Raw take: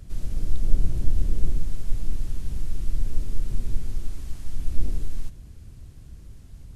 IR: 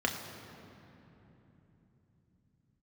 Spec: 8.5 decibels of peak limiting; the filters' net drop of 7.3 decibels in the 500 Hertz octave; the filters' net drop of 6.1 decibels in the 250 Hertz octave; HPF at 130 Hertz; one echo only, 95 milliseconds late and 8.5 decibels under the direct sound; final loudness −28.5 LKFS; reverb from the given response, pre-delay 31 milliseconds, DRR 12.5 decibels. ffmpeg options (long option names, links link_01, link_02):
-filter_complex "[0:a]highpass=130,equalizer=frequency=250:width_type=o:gain=-6,equalizer=frequency=500:width_type=o:gain=-7.5,alimiter=level_in=12dB:limit=-24dB:level=0:latency=1,volume=-12dB,aecho=1:1:95:0.376,asplit=2[link_01][link_02];[1:a]atrim=start_sample=2205,adelay=31[link_03];[link_02][link_03]afir=irnorm=-1:irlink=0,volume=-21dB[link_04];[link_01][link_04]amix=inputs=2:normalize=0,volume=18dB"